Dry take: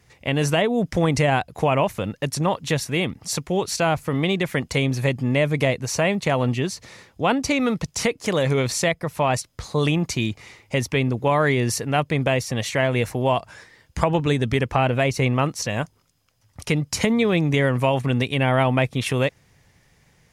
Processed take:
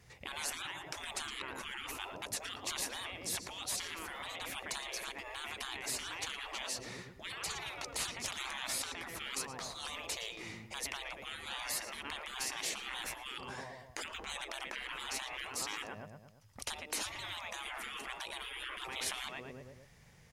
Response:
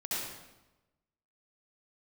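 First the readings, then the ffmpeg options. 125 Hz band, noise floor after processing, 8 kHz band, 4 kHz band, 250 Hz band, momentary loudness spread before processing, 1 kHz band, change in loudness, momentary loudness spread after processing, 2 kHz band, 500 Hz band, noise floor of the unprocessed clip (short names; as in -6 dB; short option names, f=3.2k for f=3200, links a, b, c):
-34.0 dB, -58 dBFS, -8.5 dB, -9.5 dB, -30.0 dB, 7 LU, -18.5 dB, -17.5 dB, 7 LU, -14.5 dB, -27.5 dB, -61 dBFS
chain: -filter_complex "[0:a]equalizer=f=300:w=4.4:g=-5,asplit=2[a][b];[b]adelay=114,lowpass=f=2.4k:p=1,volume=-12dB,asplit=2[c][d];[d]adelay=114,lowpass=f=2.4k:p=1,volume=0.52,asplit=2[e][f];[f]adelay=114,lowpass=f=2.4k:p=1,volume=0.52,asplit=2[g][h];[h]adelay=114,lowpass=f=2.4k:p=1,volume=0.52,asplit=2[i][j];[j]adelay=114,lowpass=f=2.4k:p=1,volume=0.52[k];[a][c][e][g][i][k]amix=inputs=6:normalize=0,afftfilt=real='re*lt(hypot(re,im),0.0631)':imag='im*lt(hypot(re,im),0.0631)':win_size=1024:overlap=0.75,volume=-3.5dB"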